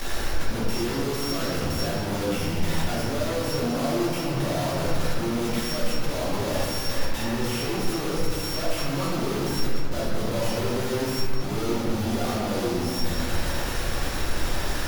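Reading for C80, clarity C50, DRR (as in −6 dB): 0.0 dB, −1.5 dB, −7.5 dB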